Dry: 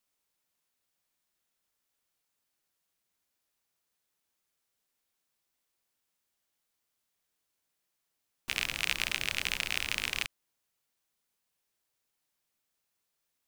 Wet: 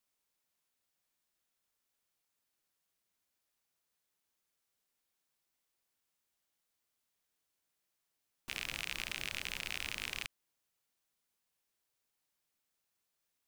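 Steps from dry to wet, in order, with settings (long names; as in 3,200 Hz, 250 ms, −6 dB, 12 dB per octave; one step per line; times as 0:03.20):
brickwall limiter −17 dBFS, peak gain reduction 8.5 dB
level −2.5 dB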